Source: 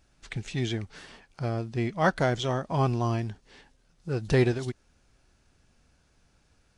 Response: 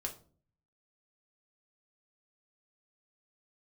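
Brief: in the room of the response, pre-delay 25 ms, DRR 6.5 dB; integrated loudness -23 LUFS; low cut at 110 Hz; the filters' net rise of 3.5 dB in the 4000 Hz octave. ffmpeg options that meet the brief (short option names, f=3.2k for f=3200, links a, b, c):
-filter_complex "[0:a]highpass=110,equalizer=f=4k:t=o:g=4.5,asplit=2[a][b];[1:a]atrim=start_sample=2205,adelay=25[c];[b][c]afir=irnorm=-1:irlink=0,volume=-6dB[d];[a][d]amix=inputs=2:normalize=0,volume=5dB"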